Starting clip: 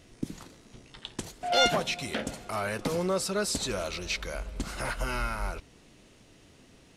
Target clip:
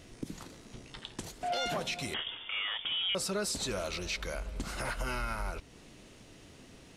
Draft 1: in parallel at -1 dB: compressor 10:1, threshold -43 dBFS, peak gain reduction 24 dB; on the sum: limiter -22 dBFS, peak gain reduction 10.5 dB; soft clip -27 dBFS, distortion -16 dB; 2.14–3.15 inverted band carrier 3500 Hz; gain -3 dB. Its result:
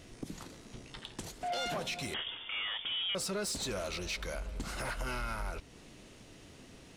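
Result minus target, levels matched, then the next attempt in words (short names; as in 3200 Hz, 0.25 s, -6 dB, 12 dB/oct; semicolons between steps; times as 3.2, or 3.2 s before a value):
soft clip: distortion +19 dB
in parallel at -1 dB: compressor 10:1, threshold -43 dBFS, peak gain reduction 24 dB; on the sum: limiter -22 dBFS, peak gain reduction 10.5 dB; soft clip -15.5 dBFS, distortion -35 dB; 2.14–3.15 inverted band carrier 3500 Hz; gain -3 dB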